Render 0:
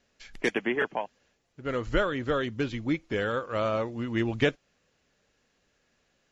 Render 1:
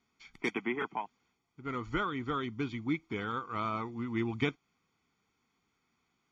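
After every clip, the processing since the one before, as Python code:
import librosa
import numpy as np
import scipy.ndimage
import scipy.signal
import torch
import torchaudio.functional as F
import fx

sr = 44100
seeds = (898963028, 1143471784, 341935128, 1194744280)

y = fx.highpass(x, sr, hz=190.0, slope=6)
y = fx.high_shelf(y, sr, hz=3500.0, db=-9.0)
y = y + 0.89 * np.pad(y, (int(0.9 * sr / 1000.0), 0))[:len(y)]
y = y * librosa.db_to_amplitude(-5.0)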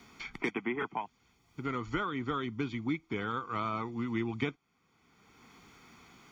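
y = fx.band_squash(x, sr, depth_pct=70)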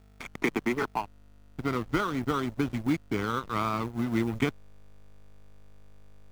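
y = fx.backlash(x, sr, play_db=-33.5)
y = fx.add_hum(y, sr, base_hz=50, snr_db=25)
y = fx.quant_companded(y, sr, bits=6)
y = y * librosa.db_to_amplitude(6.5)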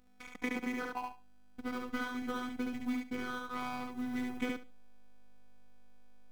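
y = fx.robotise(x, sr, hz=249.0)
y = fx.echo_feedback(y, sr, ms=71, feedback_pct=18, wet_db=-3.0)
y = y * librosa.db_to_amplitude(-7.0)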